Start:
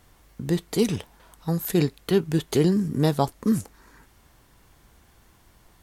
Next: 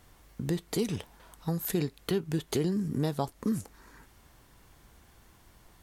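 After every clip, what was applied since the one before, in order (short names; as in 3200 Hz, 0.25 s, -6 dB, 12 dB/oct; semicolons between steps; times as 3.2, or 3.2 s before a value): compressor 2.5:1, threshold -27 dBFS, peak gain reduction 8.5 dB; gain -1.5 dB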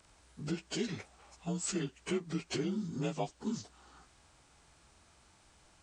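inharmonic rescaling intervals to 87%; low shelf 470 Hz -6 dB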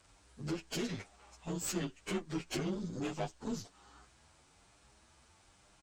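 added harmonics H 5 -25 dB, 8 -18 dB, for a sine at -21 dBFS; endless flanger 8.4 ms +1.1 Hz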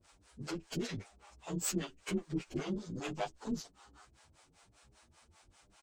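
harmonic tremolo 5.1 Hz, depth 100%, crossover 440 Hz; gain +4 dB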